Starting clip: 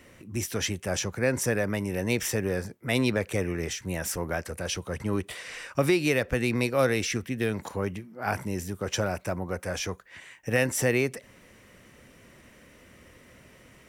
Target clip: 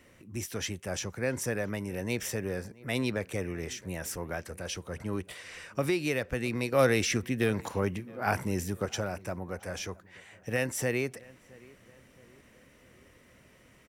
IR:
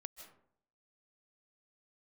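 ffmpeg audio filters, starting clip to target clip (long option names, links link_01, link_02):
-filter_complex "[0:a]asettb=1/sr,asplit=3[link_01][link_02][link_03];[link_01]atrim=end=6.724[link_04];[link_02]atrim=start=6.72:end=8.86,asetpts=PTS-STARTPTS,afade=type=in:duration=0.004:curve=qsin,afade=type=out:start_time=2.136:duration=0.004:curve=qsin,acontrast=52[link_05];[link_03]atrim=start=8.856[link_06];[link_04][link_05]acrossfade=duration=0.004:curve1=hsin:curve2=qsin[link_07];[link_07][link_06]acrossfade=duration=0.004:curve1=qsin:curve2=hsin,asplit=2[link_08][link_09];[link_09]adelay=670,lowpass=frequency=2200:poles=1,volume=-23dB,asplit=2[link_10][link_11];[link_11]adelay=670,lowpass=frequency=2200:poles=1,volume=0.52,asplit=2[link_12][link_13];[link_13]adelay=670,lowpass=frequency=2200:poles=1,volume=0.52[link_14];[link_08][link_10][link_12][link_14]amix=inputs=4:normalize=0,volume=-5.5dB"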